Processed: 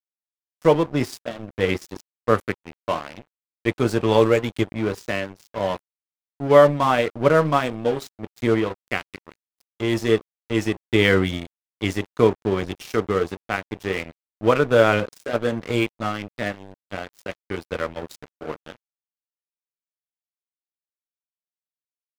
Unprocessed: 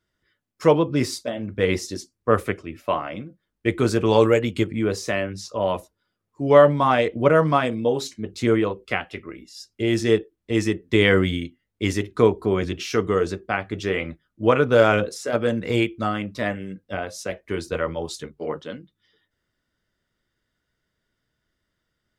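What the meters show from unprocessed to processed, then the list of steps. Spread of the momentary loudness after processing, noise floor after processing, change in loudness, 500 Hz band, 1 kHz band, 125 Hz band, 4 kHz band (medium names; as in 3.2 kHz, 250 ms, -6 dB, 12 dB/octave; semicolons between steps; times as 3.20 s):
17 LU, under -85 dBFS, 0.0 dB, -0.5 dB, 0.0 dB, -1.0 dB, -0.5 dB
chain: crossover distortion -31 dBFS; trim +1 dB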